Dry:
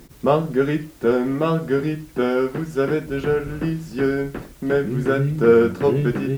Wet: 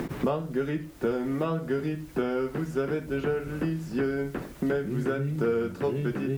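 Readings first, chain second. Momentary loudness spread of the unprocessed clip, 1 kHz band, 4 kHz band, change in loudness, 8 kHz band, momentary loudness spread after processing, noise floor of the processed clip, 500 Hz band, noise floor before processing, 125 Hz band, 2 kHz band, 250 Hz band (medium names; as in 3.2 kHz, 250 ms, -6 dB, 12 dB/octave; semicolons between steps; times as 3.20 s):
10 LU, -9.5 dB, -8.5 dB, -8.5 dB, no reading, 3 LU, -44 dBFS, -9.5 dB, -46 dBFS, -7.5 dB, -8.0 dB, -7.0 dB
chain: three bands compressed up and down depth 100%; trim -9 dB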